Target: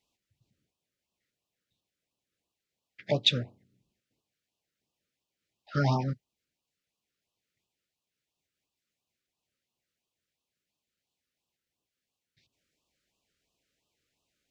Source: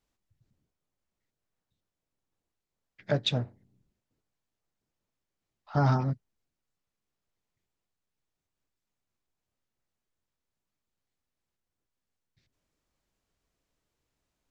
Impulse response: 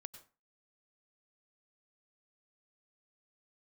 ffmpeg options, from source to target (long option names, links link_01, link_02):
-af "highpass=frequency=120:poles=1,equalizer=frequency=3000:width=0.51:gain=6.5,afftfilt=real='re*(1-between(b*sr/1024,820*pow(1800/820,0.5+0.5*sin(2*PI*2.9*pts/sr))/1.41,820*pow(1800/820,0.5+0.5*sin(2*PI*2.9*pts/sr))*1.41))':imag='im*(1-between(b*sr/1024,820*pow(1800/820,0.5+0.5*sin(2*PI*2.9*pts/sr))/1.41,820*pow(1800/820,0.5+0.5*sin(2*PI*2.9*pts/sr))*1.41))':win_size=1024:overlap=0.75"